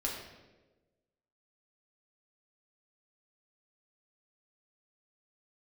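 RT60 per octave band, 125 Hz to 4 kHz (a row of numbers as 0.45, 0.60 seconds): 1.4, 1.4, 1.4, 1.0, 0.95, 0.85 seconds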